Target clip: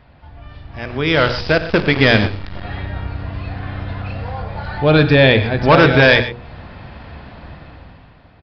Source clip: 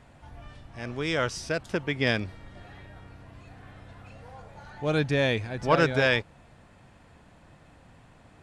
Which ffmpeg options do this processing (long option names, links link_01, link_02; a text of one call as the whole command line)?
ffmpeg -i in.wav -filter_complex "[0:a]equalizer=frequency=62:width_type=o:width=0.67:gain=9,bandreject=frequency=60:width_type=h:width=6,bandreject=frequency=120:width_type=h:width=6,bandreject=frequency=180:width_type=h:width=6,bandreject=frequency=240:width_type=h:width=6,bandreject=frequency=300:width_type=h:width=6,bandreject=frequency=360:width_type=h:width=6,bandreject=frequency=420:width_type=h:width=6,bandreject=frequency=480:width_type=h:width=6,bandreject=frequency=540:width_type=h:width=6,asplit=2[link_01][link_02];[link_02]acompressor=threshold=-40dB:ratio=10,volume=-3dB[link_03];[link_01][link_03]amix=inputs=2:normalize=0,asoftclip=type=hard:threshold=-18dB,dynaudnorm=framelen=170:gausssize=11:maxgain=14dB,asettb=1/sr,asplit=3[link_04][link_05][link_06];[link_04]atrim=end=1.144[link_07];[link_05]atrim=start=1.14:end=2.63,asetpts=PTS-STARTPTS,afade=type=in:duration=0.004:curve=qsin,afade=type=out:start_time=1.486:duration=0.004:curve=qsin,acrusher=bits=4:dc=4:mix=0:aa=0.000001[link_08];[link_06]atrim=start=2.626[link_09];[link_07][link_08]acrossfade=duration=0.004:curve1=hsin:curve2=qsin[link_10];[link_10][link_09]acrossfade=duration=0.004:curve1=qsin:curve2=hsin,asplit=2[link_11][link_12];[link_12]aecho=0:1:52|94|125:0.15|0.178|0.178[link_13];[link_11][link_13]amix=inputs=2:normalize=0,aresample=11025,aresample=44100" out.wav